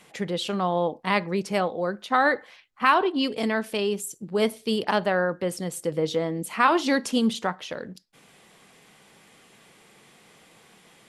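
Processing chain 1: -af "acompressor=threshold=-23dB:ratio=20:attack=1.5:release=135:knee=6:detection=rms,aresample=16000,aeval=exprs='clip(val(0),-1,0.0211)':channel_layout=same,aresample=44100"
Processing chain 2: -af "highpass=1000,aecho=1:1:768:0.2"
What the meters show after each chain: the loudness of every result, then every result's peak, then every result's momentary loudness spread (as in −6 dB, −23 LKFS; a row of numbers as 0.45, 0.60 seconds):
−33.5, −29.5 LKFS; −16.0, −9.5 dBFS; 5, 13 LU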